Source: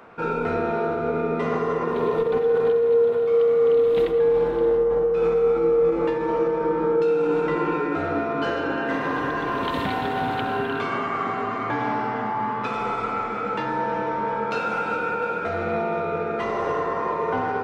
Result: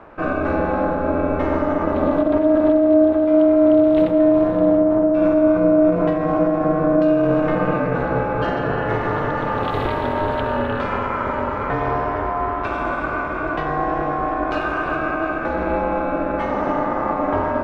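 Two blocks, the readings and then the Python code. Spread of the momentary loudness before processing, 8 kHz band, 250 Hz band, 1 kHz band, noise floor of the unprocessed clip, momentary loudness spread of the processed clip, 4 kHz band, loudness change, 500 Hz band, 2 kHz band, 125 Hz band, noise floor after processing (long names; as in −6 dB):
7 LU, can't be measured, +11.0 dB, +3.0 dB, −28 dBFS, 8 LU, −1.0 dB, +4.0 dB, +2.0 dB, +3.5 dB, +8.0 dB, −24 dBFS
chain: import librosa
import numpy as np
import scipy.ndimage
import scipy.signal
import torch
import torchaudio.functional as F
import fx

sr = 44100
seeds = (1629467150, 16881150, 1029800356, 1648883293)

y = fx.high_shelf(x, sr, hz=2100.0, db=-10.0)
y = y * np.sin(2.0 * np.pi * 160.0 * np.arange(len(y)) / sr)
y = y * librosa.db_to_amplitude(8.0)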